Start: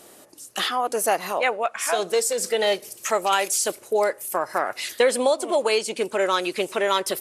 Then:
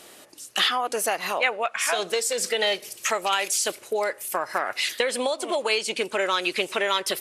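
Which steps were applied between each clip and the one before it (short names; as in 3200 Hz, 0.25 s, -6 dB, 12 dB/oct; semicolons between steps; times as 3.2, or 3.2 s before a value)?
compressor, threshold -21 dBFS, peak gain reduction 7.5 dB; bell 2800 Hz +8.5 dB 2.2 oct; gain -2 dB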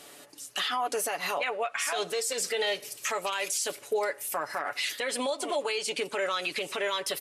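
comb 7 ms, depth 55%; limiter -17.5 dBFS, peak gain reduction 10 dB; gain -3 dB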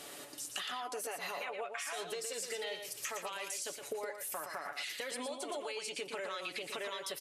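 compressor 10:1, threshold -39 dBFS, peak gain reduction 15 dB; echo 0.117 s -6.5 dB; gain +1 dB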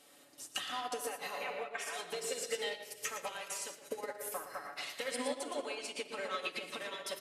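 shoebox room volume 3900 m³, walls mixed, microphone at 2.1 m; upward expander 2.5:1, over -46 dBFS; gain +3 dB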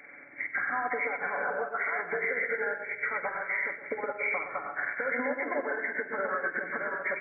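nonlinear frequency compression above 1300 Hz 4:1; limiter -29 dBFS, peak gain reduction 7 dB; gain +8 dB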